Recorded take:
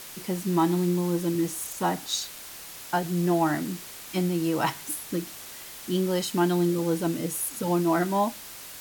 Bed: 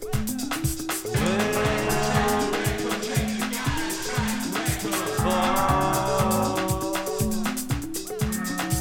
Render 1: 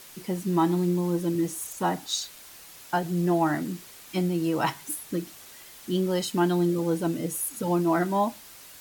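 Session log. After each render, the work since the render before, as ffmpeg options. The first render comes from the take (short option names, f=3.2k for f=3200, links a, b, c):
-af "afftdn=nr=6:nf=-42"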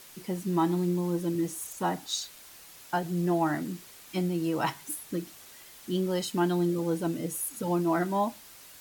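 -af "volume=-3dB"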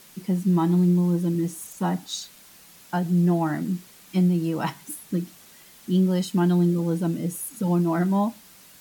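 -af "equalizer=f=190:t=o:w=0.7:g=11.5"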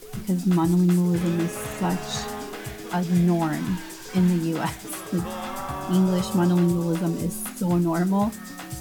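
-filter_complex "[1:a]volume=-10dB[a];[0:a][a]amix=inputs=2:normalize=0"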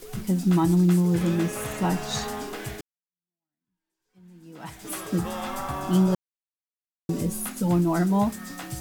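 -filter_complex "[0:a]asplit=4[a][b][c][d];[a]atrim=end=2.81,asetpts=PTS-STARTPTS,afade=t=out:st=2.806:d=0.004:c=hsin[e];[b]atrim=start=2.81:end=6.15,asetpts=PTS-STARTPTS,afade=t=in:d=2.11:c=exp,afade=t=out:st=3.336:d=0.004:c=hsin[f];[c]atrim=start=6.15:end=7.09,asetpts=PTS-STARTPTS,volume=0[g];[d]atrim=start=7.09,asetpts=PTS-STARTPTS,afade=t=in:d=0.004:c=hsin[h];[e][f][g][h]concat=n=4:v=0:a=1"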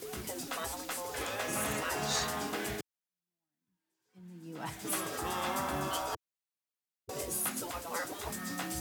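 -af "highpass=83,afftfilt=real='re*lt(hypot(re,im),0.126)':imag='im*lt(hypot(re,im),0.126)':win_size=1024:overlap=0.75"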